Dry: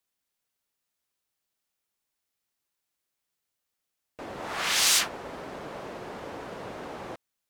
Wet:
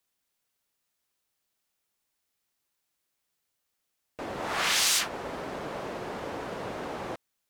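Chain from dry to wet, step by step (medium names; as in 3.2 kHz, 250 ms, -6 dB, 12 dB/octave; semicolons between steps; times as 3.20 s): compression 3:1, threshold -26 dBFS, peak gain reduction 6.5 dB; trim +3 dB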